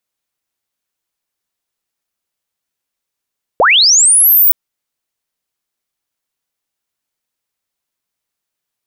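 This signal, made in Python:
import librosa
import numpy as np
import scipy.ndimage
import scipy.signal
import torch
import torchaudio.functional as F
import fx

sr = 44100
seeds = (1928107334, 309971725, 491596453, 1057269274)

y = fx.chirp(sr, length_s=0.92, from_hz=410.0, to_hz=16000.0, law='linear', from_db=-5.5, to_db=-5.0)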